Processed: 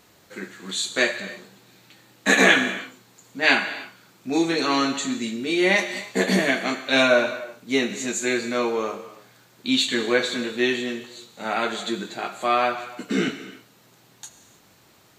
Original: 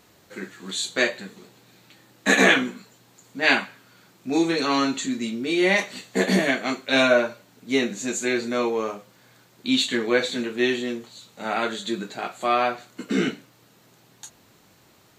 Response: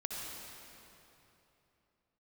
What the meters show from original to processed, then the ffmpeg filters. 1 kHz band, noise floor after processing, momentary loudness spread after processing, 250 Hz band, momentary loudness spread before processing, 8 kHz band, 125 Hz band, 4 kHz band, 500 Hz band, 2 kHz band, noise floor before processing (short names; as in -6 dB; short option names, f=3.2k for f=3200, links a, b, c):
+1.0 dB, -56 dBFS, 17 LU, -0.5 dB, 16 LU, +1.5 dB, -0.5 dB, +1.5 dB, 0.0 dB, +1.5 dB, -57 dBFS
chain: -filter_complex "[0:a]asplit=2[a][b];[1:a]atrim=start_sample=2205,afade=t=out:st=0.37:d=0.01,atrim=end_sample=16758,lowshelf=f=420:g=-11[c];[b][c]afir=irnorm=-1:irlink=0,volume=-5.5dB[d];[a][d]amix=inputs=2:normalize=0,volume=-1.5dB"